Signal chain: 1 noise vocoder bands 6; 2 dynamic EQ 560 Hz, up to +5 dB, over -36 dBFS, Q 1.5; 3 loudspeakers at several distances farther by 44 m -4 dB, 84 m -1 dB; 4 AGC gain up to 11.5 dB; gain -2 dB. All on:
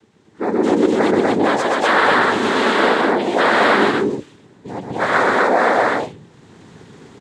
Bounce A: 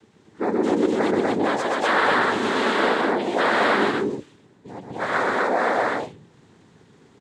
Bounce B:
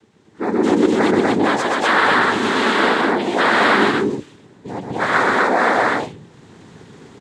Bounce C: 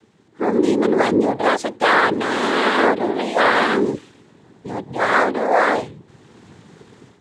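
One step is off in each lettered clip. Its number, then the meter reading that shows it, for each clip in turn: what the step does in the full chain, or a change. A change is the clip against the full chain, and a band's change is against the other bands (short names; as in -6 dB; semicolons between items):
4, loudness change -5.5 LU; 2, 500 Hz band -3.0 dB; 3, crest factor change +2.0 dB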